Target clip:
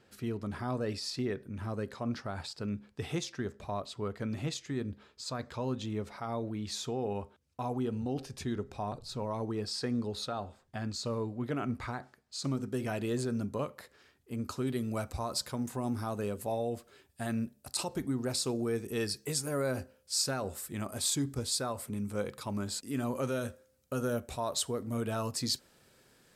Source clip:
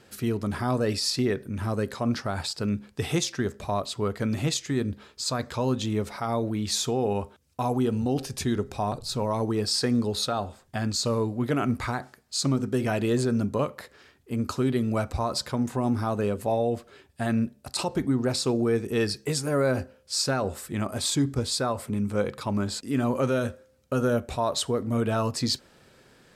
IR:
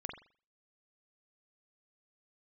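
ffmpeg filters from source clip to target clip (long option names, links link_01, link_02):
-af "asetnsamples=nb_out_samples=441:pad=0,asendcmd='12.44 highshelf g 4.5;14.67 highshelf g 12',highshelf=frequency=7000:gain=-8,volume=-8.5dB"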